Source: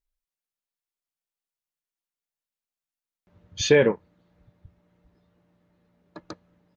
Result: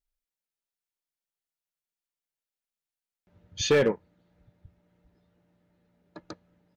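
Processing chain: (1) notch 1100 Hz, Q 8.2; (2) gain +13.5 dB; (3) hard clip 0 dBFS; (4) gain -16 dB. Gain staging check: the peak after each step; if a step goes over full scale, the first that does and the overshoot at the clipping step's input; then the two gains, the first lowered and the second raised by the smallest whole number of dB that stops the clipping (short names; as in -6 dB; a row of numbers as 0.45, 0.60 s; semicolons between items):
-6.5, +7.0, 0.0, -16.0 dBFS; step 2, 7.0 dB; step 2 +6.5 dB, step 4 -9 dB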